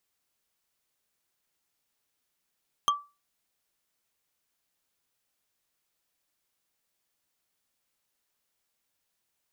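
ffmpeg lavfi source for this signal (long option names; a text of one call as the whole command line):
ffmpeg -f lavfi -i "aevalsrc='0.133*pow(10,-3*t/0.28)*sin(2*PI*1160*t)+0.0841*pow(10,-3*t/0.083)*sin(2*PI*3198.1*t)+0.0531*pow(10,-3*t/0.037)*sin(2*PI*6268.6*t)+0.0335*pow(10,-3*t/0.02)*sin(2*PI*10362.3*t)+0.0211*pow(10,-3*t/0.013)*sin(2*PI*15474.4*t)':duration=0.45:sample_rate=44100" out.wav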